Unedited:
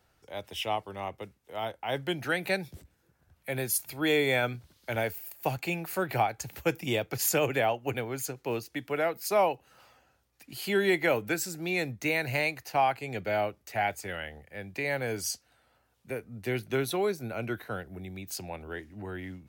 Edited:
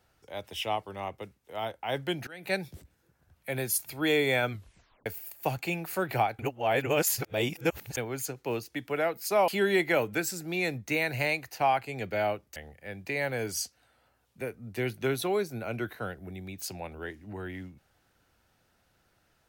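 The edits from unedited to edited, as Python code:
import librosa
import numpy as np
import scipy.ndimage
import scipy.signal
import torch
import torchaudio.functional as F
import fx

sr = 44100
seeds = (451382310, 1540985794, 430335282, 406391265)

y = fx.edit(x, sr, fx.fade_in_from(start_s=2.27, length_s=0.27, curve='qua', floor_db=-20.5),
    fx.tape_stop(start_s=4.5, length_s=0.56),
    fx.reverse_span(start_s=6.39, length_s=1.58),
    fx.cut(start_s=9.48, length_s=1.14),
    fx.cut(start_s=13.7, length_s=0.55), tone=tone)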